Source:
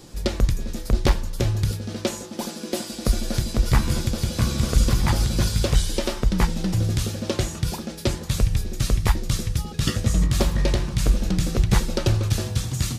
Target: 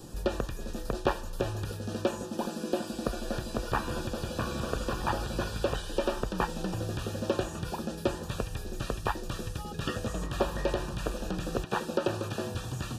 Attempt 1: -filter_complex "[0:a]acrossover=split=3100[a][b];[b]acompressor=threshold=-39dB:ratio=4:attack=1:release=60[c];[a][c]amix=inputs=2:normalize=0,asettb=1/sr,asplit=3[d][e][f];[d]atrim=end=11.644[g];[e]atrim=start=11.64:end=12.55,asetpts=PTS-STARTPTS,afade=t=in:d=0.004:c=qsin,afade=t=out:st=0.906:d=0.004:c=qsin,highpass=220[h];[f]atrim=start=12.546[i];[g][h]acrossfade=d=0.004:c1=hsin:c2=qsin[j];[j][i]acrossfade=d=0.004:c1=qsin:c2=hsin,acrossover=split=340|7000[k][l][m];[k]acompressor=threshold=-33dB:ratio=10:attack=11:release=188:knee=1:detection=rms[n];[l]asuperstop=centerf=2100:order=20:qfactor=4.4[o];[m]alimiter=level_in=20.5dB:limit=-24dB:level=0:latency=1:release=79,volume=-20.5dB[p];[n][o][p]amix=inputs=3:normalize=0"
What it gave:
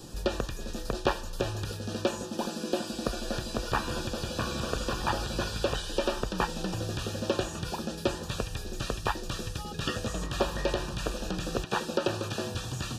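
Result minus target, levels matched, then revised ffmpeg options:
4000 Hz band +4.5 dB
-filter_complex "[0:a]acrossover=split=3100[a][b];[b]acompressor=threshold=-39dB:ratio=4:attack=1:release=60[c];[a][c]amix=inputs=2:normalize=0,asettb=1/sr,asplit=3[d][e][f];[d]atrim=end=11.644[g];[e]atrim=start=11.64:end=12.55,asetpts=PTS-STARTPTS,afade=t=in:d=0.004:c=qsin,afade=t=out:st=0.906:d=0.004:c=qsin,highpass=220[h];[f]atrim=start=12.546[i];[g][h]acrossfade=d=0.004:c1=hsin:c2=qsin[j];[j][i]acrossfade=d=0.004:c1=qsin:c2=hsin,acrossover=split=340|7000[k][l][m];[k]acompressor=threshold=-33dB:ratio=10:attack=11:release=188:knee=1:detection=rms[n];[l]asuperstop=centerf=2100:order=20:qfactor=4.4,highshelf=f=3.5k:g=-11[o];[m]alimiter=level_in=20.5dB:limit=-24dB:level=0:latency=1:release=79,volume=-20.5dB[p];[n][o][p]amix=inputs=3:normalize=0"

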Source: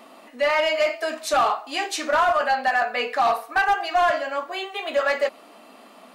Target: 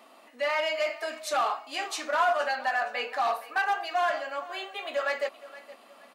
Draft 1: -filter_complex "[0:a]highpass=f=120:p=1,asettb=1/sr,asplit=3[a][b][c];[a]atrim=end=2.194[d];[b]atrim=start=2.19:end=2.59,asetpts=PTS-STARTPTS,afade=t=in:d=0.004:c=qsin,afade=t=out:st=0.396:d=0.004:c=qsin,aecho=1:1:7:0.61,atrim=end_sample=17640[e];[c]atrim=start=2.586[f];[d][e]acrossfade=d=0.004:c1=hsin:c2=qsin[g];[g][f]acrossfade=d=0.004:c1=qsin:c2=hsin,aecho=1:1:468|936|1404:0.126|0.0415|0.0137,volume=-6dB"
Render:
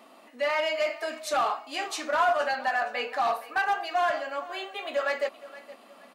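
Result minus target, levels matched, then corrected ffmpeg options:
125 Hz band +6.5 dB
-filter_complex "[0:a]highpass=f=420:p=1,asettb=1/sr,asplit=3[a][b][c];[a]atrim=end=2.194[d];[b]atrim=start=2.19:end=2.59,asetpts=PTS-STARTPTS,afade=t=in:d=0.004:c=qsin,afade=t=out:st=0.396:d=0.004:c=qsin,aecho=1:1:7:0.61,atrim=end_sample=17640[e];[c]atrim=start=2.586[f];[d][e]acrossfade=d=0.004:c1=hsin:c2=qsin[g];[g][f]acrossfade=d=0.004:c1=qsin:c2=hsin,aecho=1:1:468|936|1404:0.126|0.0415|0.0137,volume=-6dB"

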